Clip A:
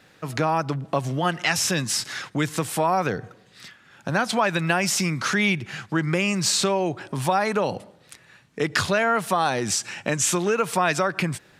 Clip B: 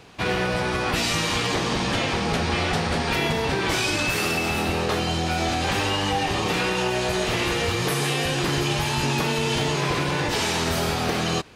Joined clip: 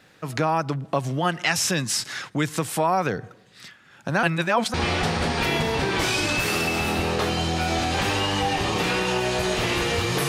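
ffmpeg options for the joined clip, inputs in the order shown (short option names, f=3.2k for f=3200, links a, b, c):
-filter_complex "[0:a]apad=whole_dur=10.28,atrim=end=10.28,asplit=2[a][b];[a]atrim=end=4.232[c];[b]atrim=start=4.228:end=4.742,asetpts=PTS-STARTPTS,areverse[d];[1:a]atrim=start=2.438:end=7.98[e];[c][d]acrossfade=d=0.004:c1=hsin:c2=hsin[f];[f][e]acrossfade=d=0.004:c1=hsin:c2=hsin"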